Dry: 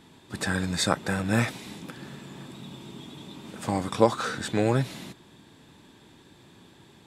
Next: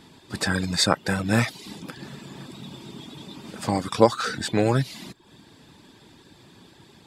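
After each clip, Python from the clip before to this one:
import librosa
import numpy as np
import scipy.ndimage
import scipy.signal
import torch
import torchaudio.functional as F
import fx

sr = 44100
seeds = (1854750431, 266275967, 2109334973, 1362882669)

y = fx.dereverb_blind(x, sr, rt60_s=0.55)
y = fx.peak_eq(y, sr, hz=4800.0, db=7.0, octaves=0.28)
y = F.gain(torch.from_numpy(y), 3.5).numpy()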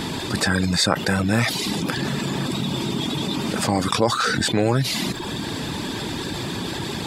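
y = fx.env_flatten(x, sr, amount_pct=70)
y = F.gain(torch.from_numpy(y), -5.0).numpy()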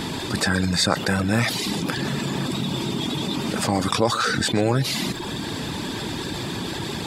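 y = x + 10.0 ** (-17.5 / 20.0) * np.pad(x, (int(128 * sr / 1000.0), 0))[:len(x)]
y = F.gain(torch.from_numpy(y), -1.0).numpy()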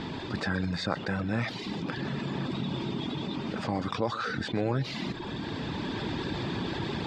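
y = fx.rider(x, sr, range_db=10, speed_s=2.0)
y = fx.air_absorb(y, sr, metres=190.0)
y = F.gain(torch.from_numpy(y), -7.5).numpy()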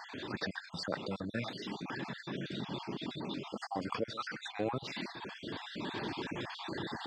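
y = fx.spec_dropout(x, sr, seeds[0], share_pct=44)
y = fx.highpass(y, sr, hz=290.0, slope=6)
y = F.gain(torch.from_numpy(y), -2.0).numpy()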